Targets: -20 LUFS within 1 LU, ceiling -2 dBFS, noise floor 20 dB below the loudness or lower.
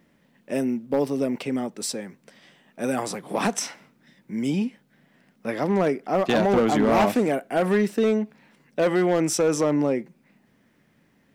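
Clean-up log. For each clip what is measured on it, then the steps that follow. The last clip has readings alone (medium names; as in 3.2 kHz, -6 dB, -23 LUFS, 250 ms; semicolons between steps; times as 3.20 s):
clipped samples 1.2%; clipping level -14.5 dBFS; loudness -24.0 LUFS; peak level -14.5 dBFS; loudness target -20.0 LUFS
-> clip repair -14.5 dBFS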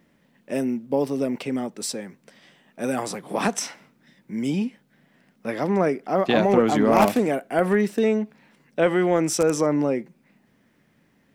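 clipped samples 0.0%; loudness -23.0 LUFS; peak level -5.5 dBFS; loudness target -20.0 LUFS
-> trim +3 dB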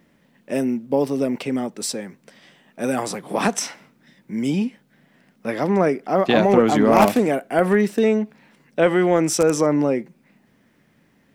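loudness -20.0 LUFS; peak level -2.5 dBFS; noise floor -61 dBFS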